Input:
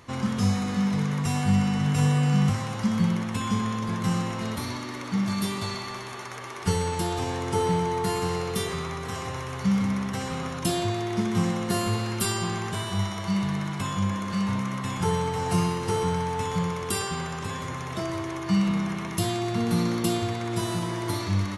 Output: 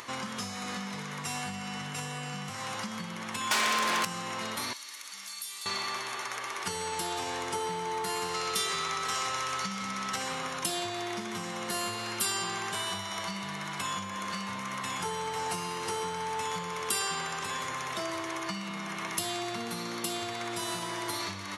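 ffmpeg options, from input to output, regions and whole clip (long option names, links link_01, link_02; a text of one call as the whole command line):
ffmpeg -i in.wav -filter_complex "[0:a]asettb=1/sr,asplit=3[link_01][link_02][link_03];[link_01]atrim=end=3.514[link_04];[link_02]atrim=start=3.51:end=4.05,asetpts=PTS-STARTPTS,afade=type=in:duration=0.004:curve=qsin,afade=type=out:start_time=0.536:duration=0.004:curve=qsin,highpass=300,aeval=exprs='0.133*sin(PI/2*5.01*val(0)/0.133)':channel_layout=same[link_05];[link_03]atrim=start=4.046[link_06];[link_04][link_05]acrossfade=duration=0.004:curve1=hsin:curve2=qsin[link_07];[link_07][link_06]acrossfade=duration=0.004:curve1=qsin:curve2=hsin,asettb=1/sr,asplit=3[link_08][link_09][link_10];[link_08]atrim=end=4.734[link_11];[link_09]atrim=start=4.73:end=5.66,asetpts=PTS-STARTPTS,afade=type=in:duration=0.004:curve=qsin,afade=type=out:start_time=0.926:duration=0.004:curve=qsin,aderivative,acompressor=threshold=-43dB:ratio=2:attack=3.2:release=140:knee=1:detection=peak[link_12];[link_10]atrim=start=5.656[link_13];[link_11][link_12]acrossfade=duration=0.004:curve1=hsin:curve2=qsin[link_14];[link_14][link_13]acrossfade=duration=0.004:curve1=qsin:curve2=hsin,asettb=1/sr,asplit=3[link_15][link_16][link_17];[link_15]atrim=end=8.344[link_18];[link_16]atrim=start=8.34:end=10.16,asetpts=PTS-STARTPTS,afade=type=in:duration=0.004:curve=qsin,afade=type=out:start_time=1.816:duration=0.004:curve=qsin,lowpass=5700,aemphasis=mode=production:type=75fm,aeval=exprs='val(0)+0.0178*sin(2*PI*1300*n/s)':channel_layout=same[link_19];[link_17]atrim=start=10.156[link_20];[link_18][link_19]acrossfade=duration=0.004:curve1=hsin:curve2=qsin[link_21];[link_21][link_20]acrossfade=duration=0.004:curve1=qsin:curve2=hsin,acompressor=threshold=-28dB:ratio=4,highpass=frequency=1000:poles=1,acompressor=mode=upward:threshold=-43dB:ratio=2.5,volume=4dB" out.wav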